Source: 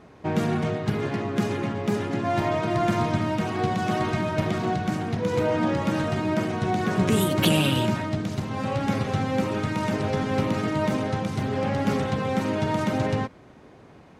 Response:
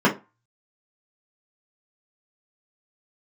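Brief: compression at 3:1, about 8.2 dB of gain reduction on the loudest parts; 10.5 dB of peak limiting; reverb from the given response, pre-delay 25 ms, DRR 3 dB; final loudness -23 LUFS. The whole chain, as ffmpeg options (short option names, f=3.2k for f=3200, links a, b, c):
-filter_complex "[0:a]acompressor=threshold=-29dB:ratio=3,alimiter=level_in=2dB:limit=-24dB:level=0:latency=1,volume=-2dB,asplit=2[a][b];[1:a]atrim=start_sample=2205,adelay=25[c];[b][c]afir=irnorm=-1:irlink=0,volume=-22.5dB[d];[a][d]amix=inputs=2:normalize=0,volume=7.5dB"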